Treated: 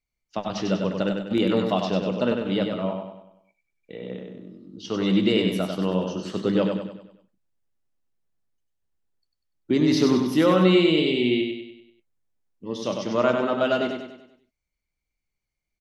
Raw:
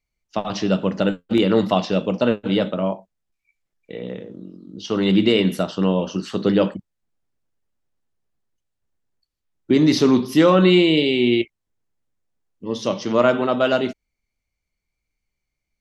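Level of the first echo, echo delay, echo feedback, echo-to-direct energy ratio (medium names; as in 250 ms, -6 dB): -5.0 dB, 97 ms, 46%, -4.0 dB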